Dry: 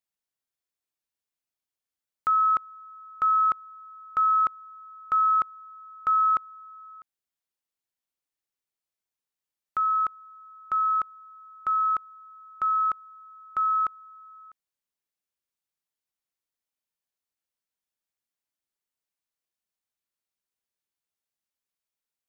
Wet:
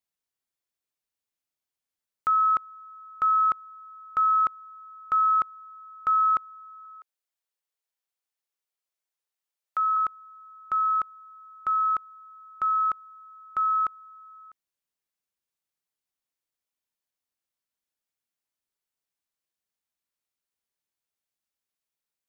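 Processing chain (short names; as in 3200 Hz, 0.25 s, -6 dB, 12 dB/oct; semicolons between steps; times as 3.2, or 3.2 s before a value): 6.85–9.97 HPF 400 Hz 24 dB/oct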